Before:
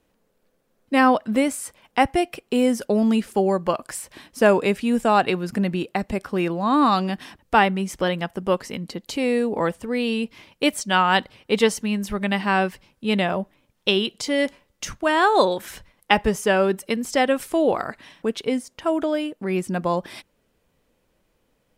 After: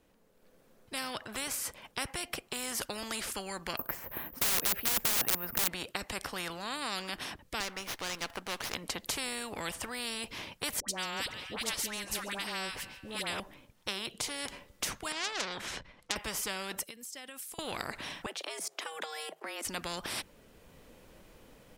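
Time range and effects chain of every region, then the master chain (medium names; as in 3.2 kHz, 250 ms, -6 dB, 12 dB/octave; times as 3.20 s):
3.77–5.68 s: low-pass 1.6 kHz + integer overflow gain 17 dB + careless resampling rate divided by 3×, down none, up zero stuff
7.60–8.75 s: high-pass 440 Hz + sliding maximum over 5 samples
10.80–13.40 s: phase dispersion highs, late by 85 ms, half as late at 980 Hz + feedback echo behind a high-pass 141 ms, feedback 52%, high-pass 2.6 kHz, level -22 dB
15.12–16.16 s: low-pass 5.2 kHz + transformer saturation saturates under 3.8 kHz
16.83–17.59 s: pre-emphasis filter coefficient 0.9 + compression 12:1, threshold -47 dBFS
18.26–19.65 s: Chebyshev high-pass 250 Hz + level held to a coarse grid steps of 15 dB + frequency shift +160 Hz
whole clip: level rider; spectrum-flattening compressor 4:1; trim -6 dB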